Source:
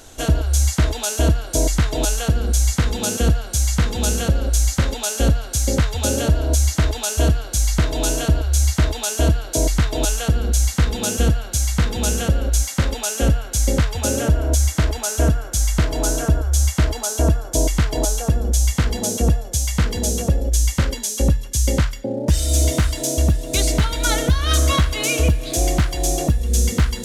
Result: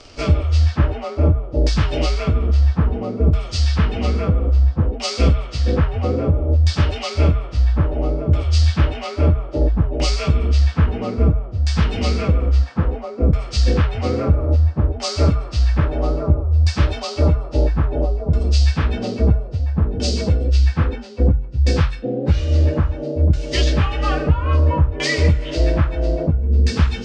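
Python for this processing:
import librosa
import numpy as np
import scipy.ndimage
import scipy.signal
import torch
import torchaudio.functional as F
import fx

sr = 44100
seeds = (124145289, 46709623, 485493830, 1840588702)

y = fx.partial_stretch(x, sr, pct=91)
y = fx.filter_lfo_lowpass(y, sr, shape='saw_down', hz=0.6, low_hz=560.0, high_hz=5600.0, q=0.75)
y = y * librosa.db_to_amplitude(3.5)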